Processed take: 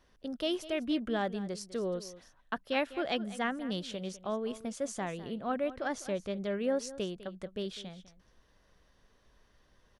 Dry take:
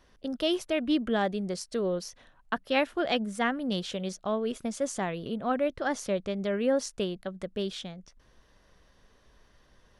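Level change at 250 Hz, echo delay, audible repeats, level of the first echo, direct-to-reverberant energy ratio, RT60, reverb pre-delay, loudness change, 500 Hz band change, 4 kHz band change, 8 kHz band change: -5.0 dB, 0.202 s, 1, -16.0 dB, none, none, none, -5.0 dB, -5.0 dB, -5.0 dB, -5.0 dB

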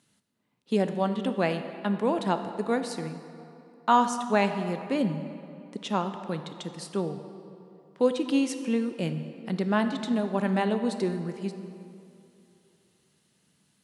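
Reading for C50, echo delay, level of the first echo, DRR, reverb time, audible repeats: 9.0 dB, none, none, 8.0 dB, 2.7 s, none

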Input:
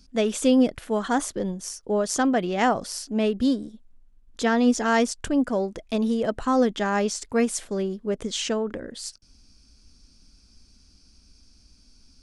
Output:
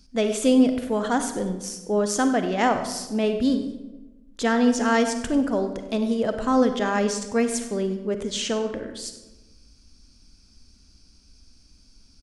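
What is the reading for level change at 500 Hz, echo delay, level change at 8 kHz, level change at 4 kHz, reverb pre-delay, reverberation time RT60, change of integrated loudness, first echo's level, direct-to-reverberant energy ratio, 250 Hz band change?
+1.0 dB, 96 ms, +0.5 dB, +0.5 dB, 38 ms, 1.1 s, +1.0 dB, -17.0 dB, 7.5 dB, +1.0 dB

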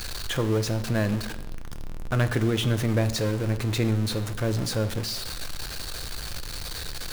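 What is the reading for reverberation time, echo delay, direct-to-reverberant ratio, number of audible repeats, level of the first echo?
0.85 s, none, 9.5 dB, none, none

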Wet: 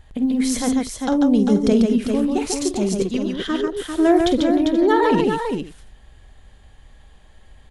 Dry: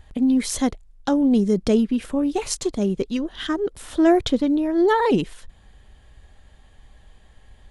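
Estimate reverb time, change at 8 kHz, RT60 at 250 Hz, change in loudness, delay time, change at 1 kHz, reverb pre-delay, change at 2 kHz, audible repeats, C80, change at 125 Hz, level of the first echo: none, +2.5 dB, none, +2.0 dB, 48 ms, +2.5 dB, none, +2.5 dB, 4, none, +2.5 dB, -11.0 dB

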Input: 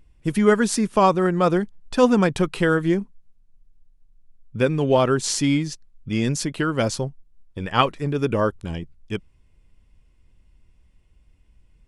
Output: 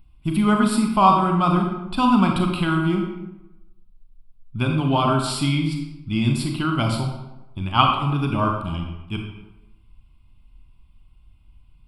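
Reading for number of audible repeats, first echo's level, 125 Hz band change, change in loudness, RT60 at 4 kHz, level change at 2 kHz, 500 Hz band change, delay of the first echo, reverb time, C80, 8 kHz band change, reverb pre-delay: none, none, +3.5 dB, +0.5 dB, 0.65 s, -1.5 dB, -7.5 dB, none, 0.95 s, 6.0 dB, -6.5 dB, 30 ms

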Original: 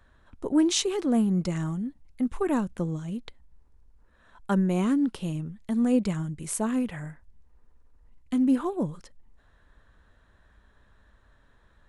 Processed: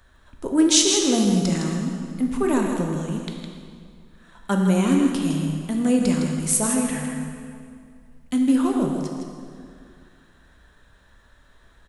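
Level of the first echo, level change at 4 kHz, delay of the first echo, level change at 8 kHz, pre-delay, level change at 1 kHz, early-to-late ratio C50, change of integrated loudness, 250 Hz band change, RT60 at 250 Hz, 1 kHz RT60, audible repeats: -7.0 dB, +10.5 dB, 0.16 s, +12.5 dB, 12 ms, +5.5 dB, 1.5 dB, +6.0 dB, +5.0 dB, 2.3 s, 2.2 s, 1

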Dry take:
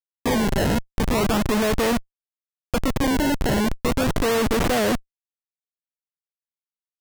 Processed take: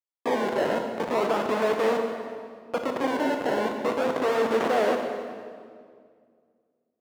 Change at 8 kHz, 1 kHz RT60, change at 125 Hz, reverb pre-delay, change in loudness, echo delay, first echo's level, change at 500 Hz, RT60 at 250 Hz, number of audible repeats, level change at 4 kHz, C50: -14.5 dB, 1.9 s, -17.5 dB, 21 ms, -4.0 dB, none, none, 0.0 dB, 2.6 s, none, -8.5 dB, 4.5 dB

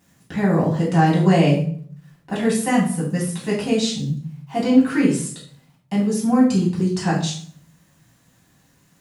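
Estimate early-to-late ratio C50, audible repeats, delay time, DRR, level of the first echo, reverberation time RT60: 5.5 dB, none, none, -6.5 dB, none, 0.50 s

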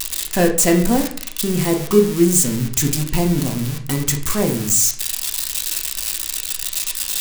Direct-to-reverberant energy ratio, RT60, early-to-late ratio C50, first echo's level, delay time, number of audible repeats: 2.0 dB, 0.50 s, 9.5 dB, none, none, none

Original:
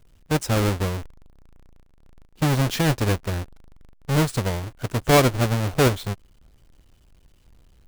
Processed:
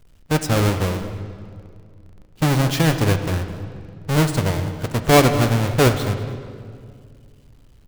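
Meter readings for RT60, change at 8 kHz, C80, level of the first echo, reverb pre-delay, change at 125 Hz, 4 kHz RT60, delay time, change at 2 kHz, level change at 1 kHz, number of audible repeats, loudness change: 2.2 s, +2.5 dB, 9.5 dB, -17.0 dB, 15 ms, +3.5 dB, 1.7 s, 0.206 s, +3.0 dB, +3.5 dB, 1, +3.0 dB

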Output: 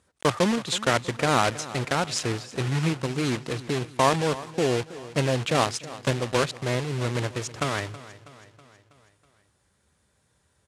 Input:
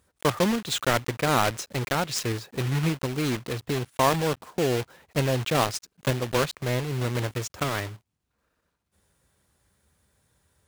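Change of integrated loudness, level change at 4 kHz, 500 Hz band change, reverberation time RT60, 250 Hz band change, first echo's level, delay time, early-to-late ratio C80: +0.5 dB, +1.0 dB, +1.0 dB, none, +0.5 dB, -17.0 dB, 0.323 s, none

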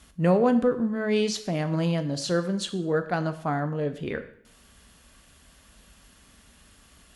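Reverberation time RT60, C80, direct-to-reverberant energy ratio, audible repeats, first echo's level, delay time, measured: 0.65 s, 15.5 dB, 9.0 dB, none, none, none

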